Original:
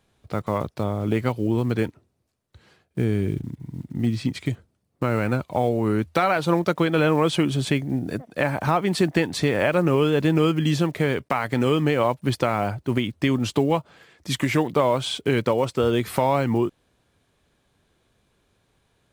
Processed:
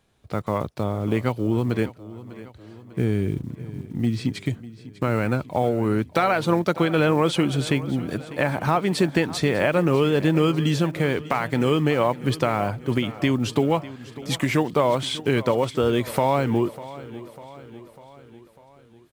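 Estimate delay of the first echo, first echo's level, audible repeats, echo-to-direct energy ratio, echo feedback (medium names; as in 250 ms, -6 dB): 598 ms, -17.0 dB, 4, -15.5 dB, 56%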